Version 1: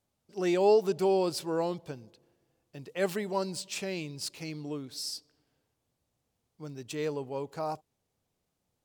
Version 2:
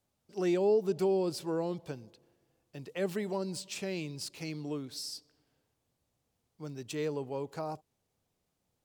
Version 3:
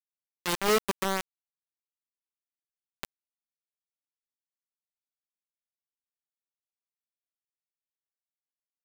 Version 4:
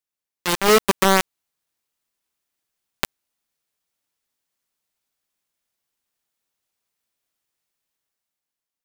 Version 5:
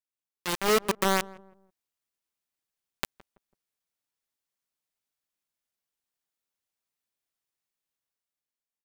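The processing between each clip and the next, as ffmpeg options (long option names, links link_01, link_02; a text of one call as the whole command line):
ffmpeg -i in.wav -filter_complex "[0:a]acrossover=split=450[link_01][link_02];[link_02]acompressor=threshold=-37dB:ratio=10[link_03];[link_01][link_03]amix=inputs=2:normalize=0" out.wav
ffmpeg -i in.wav -af "acrusher=bits=3:mix=0:aa=0.000001" out.wav
ffmpeg -i in.wav -af "dynaudnorm=framelen=180:gausssize=11:maxgain=9dB,volume=6.5dB" out.wav
ffmpeg -i in.wav -filter_complex "[0:a]asplit=2[link_01][link_02];[link_02]adelay=165,lowpass=frequency=850:poles=1,volume=-18.5dB,asplit=2[link_03][link_04];[link_04]adelay=165,lowpass=frequency=850:poles=1,volume=0.39,asplit=2[link_05][link_06];[link_06]adelay=165,lowpass=frequency=850:poles=1,volume=0.39[link_07];[link_01][link_03][link_05][link_07]amix=inputs=4:normalize=0,volume=-8.5dB" out.wav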